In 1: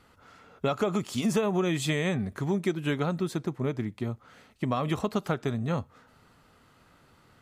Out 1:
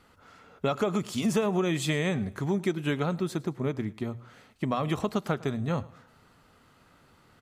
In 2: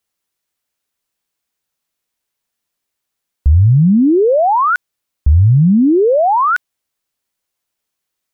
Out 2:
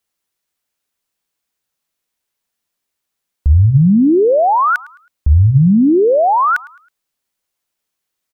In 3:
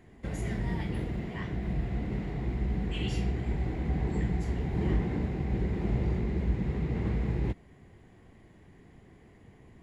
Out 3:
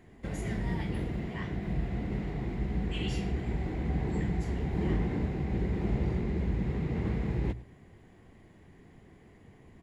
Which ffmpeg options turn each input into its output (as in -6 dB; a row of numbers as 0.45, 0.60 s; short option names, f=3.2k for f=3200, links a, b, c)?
-af "bandreject=f=60:t=h:w=6,bandreject=f=120:t=h:w=6,aecho=1:1:107|214|321:0.0891|0.0321|0.0116"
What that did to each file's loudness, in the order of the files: 0.0, 0.0, -1.0 LU